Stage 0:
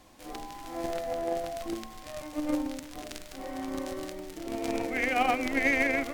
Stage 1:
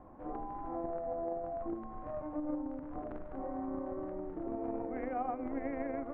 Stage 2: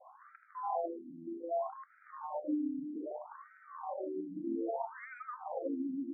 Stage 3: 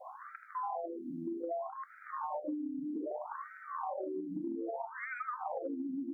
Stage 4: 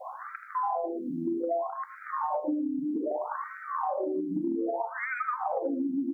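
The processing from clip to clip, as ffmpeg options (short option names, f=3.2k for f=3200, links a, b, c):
-af "lowpass=f=1.2k:w=0.5412,lowpass=f=1.2k:w=1.3066,acompressor=threshold=-41dB:ratio=3,volume=3.5dB"
-af "adynamicequalizer=threshold=0.00141:dfrequency=890:dqfactor=2.8:tfrequency=890:tqfactor=2.8:attack=5:release=100:ratio=0.375:range=3.5:mode=boostabove:tftype=bell,afftfilt=real='re*between(b*sr/1024,230*pow(1800/230,0.5+0.5*sin(2*PI*0.63*pts/sr))/1.41,230*pow(1800/230,0.5+0.5*sin(2*PI*0.63*pts/sr))*1.41)':imag='im*between(b*sr/1024,230*pow(1800/230,0.5+0.5*sin(2*PI*0.63*pts/sr))/1.41,230*pow(1800/230,0.5+0.5*sin(2*PI*0.63*pts/sr))*1.41)':win_size=1024:overlap=0.75,volume=4.5dB"
-af "acompressor=threshold=-44dB:ratio=12,volume=9dB"
-af "aecho=1:1:116:0.178,volume=8dB"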